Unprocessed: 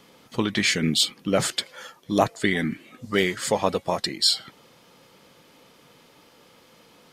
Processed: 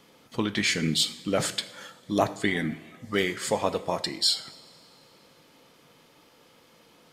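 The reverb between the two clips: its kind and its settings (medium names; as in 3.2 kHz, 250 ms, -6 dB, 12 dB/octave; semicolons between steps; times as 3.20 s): two-slope reverb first 0.67 s, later 2.8 s, from -15 dB, DRR 11.5 dB; trim -3.5 dB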